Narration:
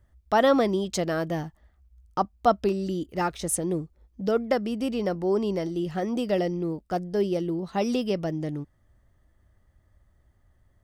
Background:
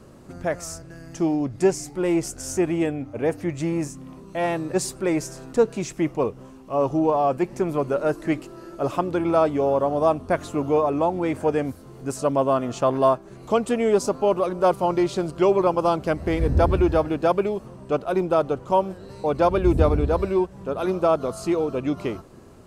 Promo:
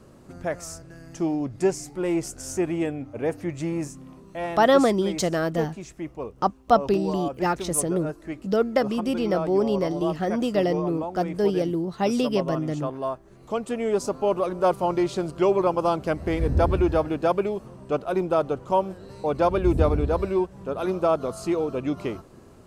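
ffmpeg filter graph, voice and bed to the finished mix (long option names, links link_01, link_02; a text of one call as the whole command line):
ffmpeg -i stem1.wav -i stem2.wav -filter_complex "[0:a]adelay=4250,volume=2.5dB[link_01];[1:a]volume=5.5dB,afade=type=out:start_time=3.93:duration=0.94:silence=0.421697,afade=type=in:start_time=13.16:duration=1.27:silence=0.375837[link_02];[link_01][link_02]amix=inputs=2:normalize=0" out.wav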